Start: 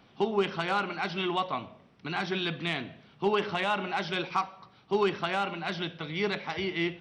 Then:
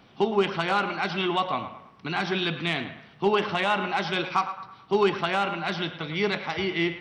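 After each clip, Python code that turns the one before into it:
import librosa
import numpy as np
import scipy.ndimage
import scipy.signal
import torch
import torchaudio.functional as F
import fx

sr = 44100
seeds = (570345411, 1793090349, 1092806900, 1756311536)

y = fx.echo_banded(x, sr, ms=109, feedback_pct=46, hz=1300.0, wet_db=-9.5)
y = F.gain(torch.from_numpy(y), 4.0).numpy()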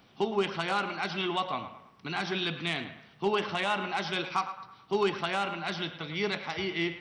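y = fx.high_shelf(x, sr, hz=6000.0, db=10.0)
y = F.gain(torch.from_numpy(y), -5.5).numpy()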